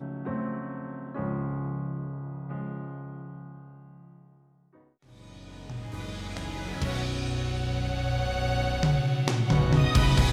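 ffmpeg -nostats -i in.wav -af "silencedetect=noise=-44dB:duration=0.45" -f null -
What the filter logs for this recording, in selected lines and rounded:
silence_start: 4.13
silence_end: 5.13 | silence_duration: 1.00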